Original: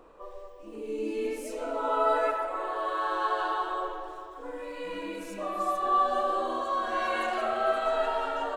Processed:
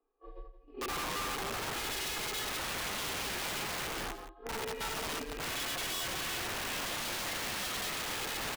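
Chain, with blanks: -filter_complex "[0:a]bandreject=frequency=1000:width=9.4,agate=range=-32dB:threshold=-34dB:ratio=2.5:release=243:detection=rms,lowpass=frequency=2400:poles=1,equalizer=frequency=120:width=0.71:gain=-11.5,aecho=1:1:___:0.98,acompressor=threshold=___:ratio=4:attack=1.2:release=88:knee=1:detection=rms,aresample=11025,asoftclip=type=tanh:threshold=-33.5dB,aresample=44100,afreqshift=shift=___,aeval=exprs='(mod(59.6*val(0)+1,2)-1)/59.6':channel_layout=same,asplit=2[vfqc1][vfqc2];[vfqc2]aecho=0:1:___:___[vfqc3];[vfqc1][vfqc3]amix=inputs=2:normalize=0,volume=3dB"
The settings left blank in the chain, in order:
2.4, -30dB, -42, 171, 0.211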